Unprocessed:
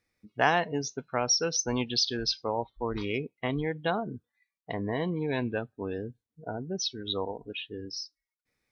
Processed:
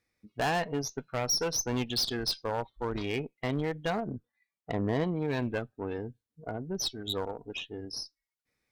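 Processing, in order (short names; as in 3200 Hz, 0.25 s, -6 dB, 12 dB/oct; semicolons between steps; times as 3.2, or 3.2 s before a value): overloaded stage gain 24 dB; 4.08–5.04 tilt shelf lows +3.5 dB, about 1200 Hz; added harmonics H 3 -28 dB, 4 -20 dB, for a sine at -20.5 dBFS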